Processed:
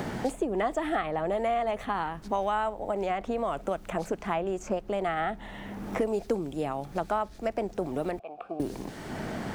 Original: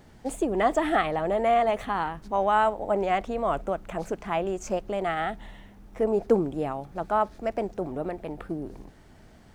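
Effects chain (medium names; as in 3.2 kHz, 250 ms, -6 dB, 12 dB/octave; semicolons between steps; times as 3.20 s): 2.79–3.71 s: compression, threshold -25 dBFS, peak gain reduction 5.5 dB; 8.19–8.60 s: vowel filter a; three bands compressed up and down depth 100%; trim -3.5 dB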